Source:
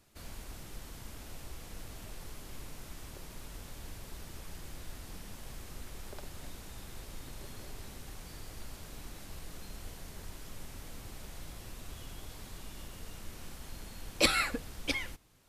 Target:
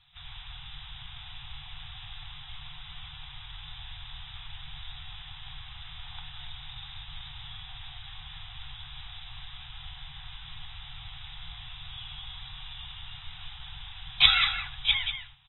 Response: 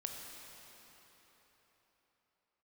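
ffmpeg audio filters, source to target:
-af "afftfilt=real='re*(1-between(b*sr/4096,160,700))':imag='im*(1-between(b*sr/4096,160,700))':win_size=4096:overlap=0.75,lowpass=f=3500:t=q:w=8.1,aecho=1:1:186:0.376" -ar 24000 -c:a aac -b:a 16k

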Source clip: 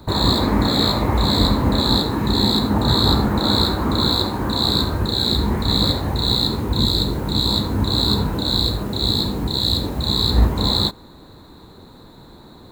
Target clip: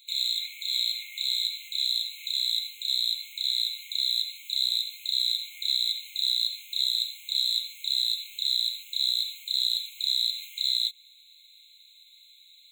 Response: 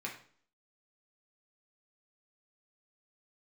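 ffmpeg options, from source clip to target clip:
-filter_complex "[0:a]acrossover=split=240[s0][s1];[s1]acompressor=threshold=0.1:ratio=6[s2];[s0][s2]amix=inputs=2:normalize=0,afftfilt=real='re*eq(mod(floor(b*sr/1024/2100),2),1)':imag='im*eq(mod(floor(b*sr/1024/2100),2),1)':win_size=1024:overlap=0.75"

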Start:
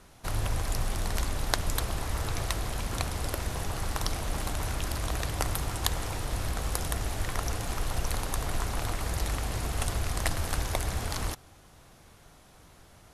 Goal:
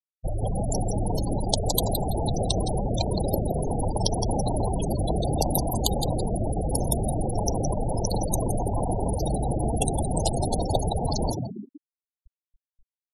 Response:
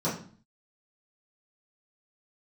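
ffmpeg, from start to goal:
-filter_complex "[0:a]aeval=exprs='0.631*(cos(1*acos(clip(val(0)/0.631,-1,1)))-cos(1*PI/2))+0.251*(cos(5*acos(clip(val(0)/0.631,-1,1)))-cos(5*PI/2))+0.0355*(cos(8*acos(clip(val(0)/0.631,-1,1)))-cos(8*PI/2))':c=same,acrossover=split=310[s0][s1];[s0]acompressor=threshold=0.0398:ratio=12[s2];[s2][s1]amix=inputs=2:normalize=0,asuperstop=centerf=1500:order=4:qfactor=0.7,asplit=2[s3][s4];[s4]asoftclip=type=tanh:threshold=0.266,volume=0.398[s5];[s3][s5]amix=inputs=2:normalize=0,asplit=9[s6][s7][s8][s9][s10][s11][s12][s13][s14];[s7]adelay=167,afreqshift=83,volume=0.631[s15];[s8]adelay=334,afreqshift=166,volume=0.367[s16];[s9]adelay=501,afreqshift=249,volume=0.211[s17];[s10]adelay=668,afreqshift=332,volume=0.123[s18];[s11]adelay=835,afreqshift=415,volume=0.0716[s19];[s12]adelay=1002,afreqshift=498,volume=0.0412[s20];[s13]adelay=1169,afreqshift=581,volume=0.024[s21];[s14]adelay=1336,afreqshift=664,volume=0.014[s22];[s6][s15][s16][s17][s18][s19][s20][s21][s22]amix=inputs=9:normalize=0,afftfilt=real='re*gte(hypot(re,im),0.126)':imag='im*gte(hypot(re,im),0.126)':win_size=1024:overlap=0.75"

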